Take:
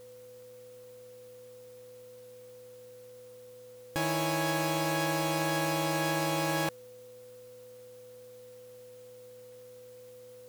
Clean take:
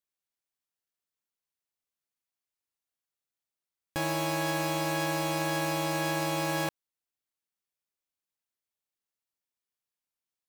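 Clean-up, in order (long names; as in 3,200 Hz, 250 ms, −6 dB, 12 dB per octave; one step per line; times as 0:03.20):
hum removal 115.6 Hz, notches 13
notch filter 500 Hz, Q 30
downward expander −43 dBFS, range −21 dB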